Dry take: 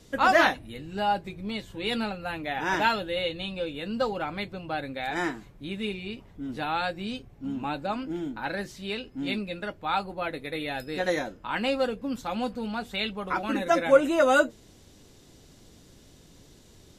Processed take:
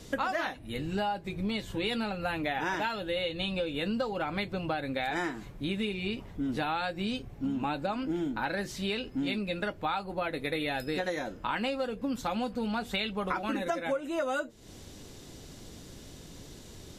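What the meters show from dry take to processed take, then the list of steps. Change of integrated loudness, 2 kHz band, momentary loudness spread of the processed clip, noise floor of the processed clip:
−4.0 dB, −5.0 dB, 17 LU, −49 dBFS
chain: downward compressor 16 to 1, threshold −34 dBFS, peak gain reduction 22.5 dB
level +6 dB

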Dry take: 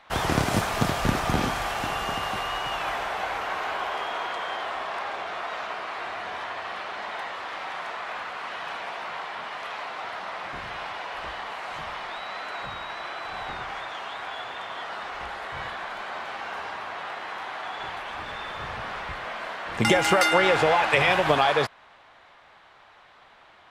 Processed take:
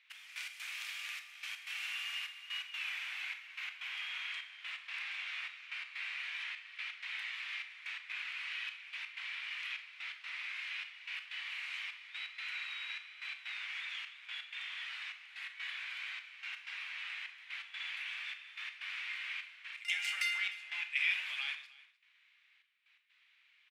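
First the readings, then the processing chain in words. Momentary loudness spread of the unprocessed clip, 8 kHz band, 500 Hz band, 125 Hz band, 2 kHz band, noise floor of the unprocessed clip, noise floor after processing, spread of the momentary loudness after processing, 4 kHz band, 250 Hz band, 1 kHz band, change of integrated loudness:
14 LU, −14.5 dB, below −40 dB, below −40 dB, −8.5 dB, −54 dBFS, −69 dBFS, 8 LU, −8.0 dB, below −40 dB, −28.5 dB, −11.5 dB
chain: speech leveller within 4 dB 0.5 s
four-pole ladder high-pass 2,100 Hz, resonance 60%
gate pattern "x..x.xxxx" 126 BPM −12 dB
on a send: single-tap delay 305 ms −21 dB
on the sum: four-comb reverb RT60 0.37 s, combs from 26 ms, DRR 8.5 dB
level −1.5 dB

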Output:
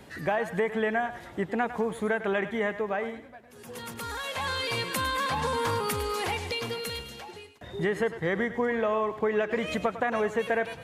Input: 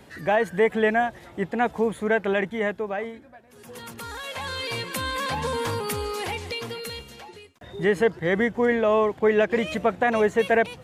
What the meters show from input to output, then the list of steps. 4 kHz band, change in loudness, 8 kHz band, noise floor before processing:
−1.0 dB, −4.5 dB, −1.0 dB, −50 dBFS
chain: dynamic equaliser 1,200 Hz, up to +5 dB, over −37 dBFS, Q 1.7
downward compressor 4 to 1, threshold −25 dBFS, peak gain reduction 9.5 dB
on a send: feedback echo with a high-pass in the loop 103 ms, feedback 36%, level −11.5 dB

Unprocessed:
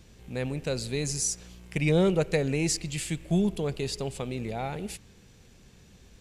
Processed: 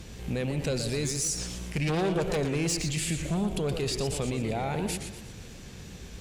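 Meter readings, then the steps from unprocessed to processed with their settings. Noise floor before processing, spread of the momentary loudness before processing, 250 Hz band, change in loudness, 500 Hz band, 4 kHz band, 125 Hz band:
−55 dBFS, 13 LU, −1.0 dB, −0.5 dB, −1.5 dB, +2.0 dB, 0.0 dB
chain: harmonic generator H 5 −7 dB, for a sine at −12.5 dBFS
brickwall limiter −23.5 dBFS, peak gain reduction 13 dB
feedback echo with a swinging delay time 118 ms, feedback 44%, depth 185 cents, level −8 dB

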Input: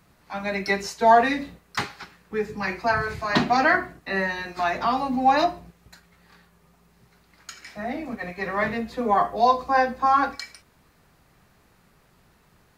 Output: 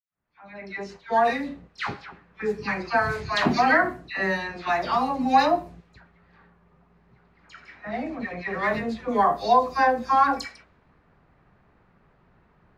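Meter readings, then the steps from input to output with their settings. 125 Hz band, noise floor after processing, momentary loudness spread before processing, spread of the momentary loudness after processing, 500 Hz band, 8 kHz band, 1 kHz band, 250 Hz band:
−0.5 dB, −62 dBFS, 13 LU, 16 LU, −1.5 dB, can't be measured, −1.0 dB, −0.5 dB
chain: fade in at the beginning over 2.06 s
all-pass dispersion lows, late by 101 ms, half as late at 1,600 Hz
low-pass that shuts in the quiet parts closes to 1,800 Hz, open at −20.5 dBFS

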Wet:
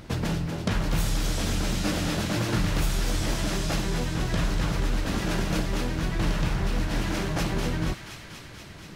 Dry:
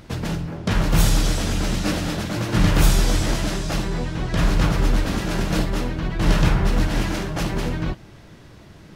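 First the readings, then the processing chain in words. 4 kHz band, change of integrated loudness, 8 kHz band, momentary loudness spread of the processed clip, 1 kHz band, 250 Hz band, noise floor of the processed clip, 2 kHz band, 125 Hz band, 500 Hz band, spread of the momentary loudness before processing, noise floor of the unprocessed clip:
−4.0 dB, −5.5 dB, −4.5 dB, 3 LU, −5.0 dB, −5.0 dB, −44 dBFS, −4.0 dB, −6.0 dB, −5.0 dB, 8 LU, −45 dBFS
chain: downward compressor 4 to 1, threshold −23 dBFS, peak gain reduction 11.5 dB
on a send: delay with a high-pass on its return 240 ms, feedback 77%, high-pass 1,600 Hz, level −7 dB

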